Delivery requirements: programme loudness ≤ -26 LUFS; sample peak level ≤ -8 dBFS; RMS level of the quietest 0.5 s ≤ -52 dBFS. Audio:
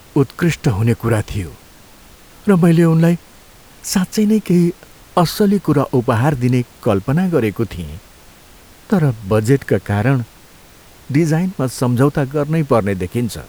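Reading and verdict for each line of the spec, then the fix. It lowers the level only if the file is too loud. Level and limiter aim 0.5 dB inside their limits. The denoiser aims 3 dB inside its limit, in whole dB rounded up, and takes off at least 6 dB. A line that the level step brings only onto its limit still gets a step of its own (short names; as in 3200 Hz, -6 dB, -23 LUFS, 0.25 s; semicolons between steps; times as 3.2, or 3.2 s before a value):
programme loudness -16.5 LUFS: fail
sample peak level -1.5 dBFS: fail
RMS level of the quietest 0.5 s -43 dBFS: fail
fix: gain -10 dB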